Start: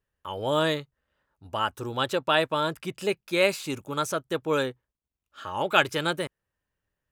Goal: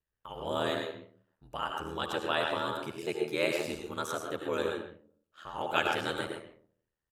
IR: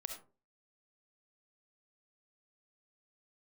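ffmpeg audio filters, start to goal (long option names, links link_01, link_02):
-filter_complex "[0:a]asplit=2[link_01][link_02];[link_02]adelay=130,highpass=300,lowpass=3400,asoftclip=type=hard:threshold=-13.5dB,volume=-10dB[link_03];[link_01][link_03]amix=inputs=2:normalize=0[link_04];[1:a]atrim=start_sample=2205,asetrate=27783,aresample=44100[link_05];[link_04][link_05]afir=irnorm=-1:irlink=0,aeval=exprs='val(0)*sin(2*PI*40*n/s)':channel_layout=same,volume=-4.5dB"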